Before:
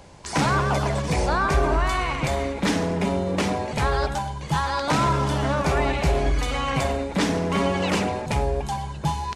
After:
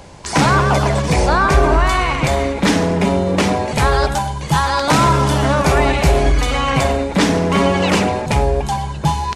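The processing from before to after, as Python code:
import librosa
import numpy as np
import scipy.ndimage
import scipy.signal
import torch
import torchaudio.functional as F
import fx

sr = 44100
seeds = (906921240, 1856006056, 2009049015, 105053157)

y = fx.high_shelf(x, sr, hz=9900.0, db=9.0, at=(3.67, 6.32))
y = y * 10.0 ** (8.0 / 20.0)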